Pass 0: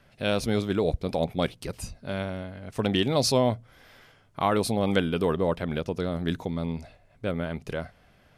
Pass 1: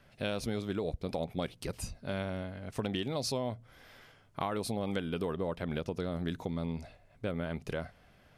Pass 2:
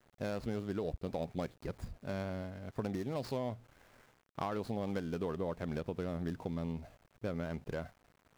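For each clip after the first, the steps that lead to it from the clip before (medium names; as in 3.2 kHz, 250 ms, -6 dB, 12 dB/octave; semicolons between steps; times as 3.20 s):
compression 6:1, threshold -28 dBFS, peak gain reduction 10.5 dB; trim -2.5 dB
median filter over 15 samples; small samples zeroed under -57.5 dBFS; trim -2.5 dB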